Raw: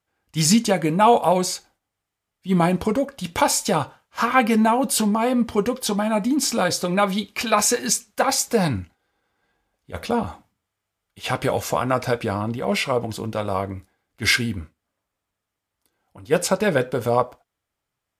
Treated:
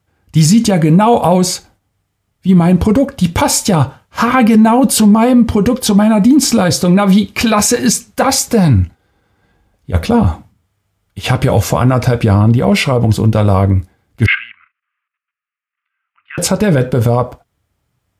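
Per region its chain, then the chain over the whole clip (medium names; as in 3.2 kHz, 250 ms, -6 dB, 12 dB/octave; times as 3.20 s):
14.26–16.38 s: treble shelf 2.1 kHz +7.5 dB + level held to a coarse grid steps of 13 dB + elliptic band-pass 1.2–2.7 kHz, stop band 50 dB
whole clip: peaking EQ 90 Hz +14 dB 3 oct; peak limiter -11 dBFS; trim +9 dB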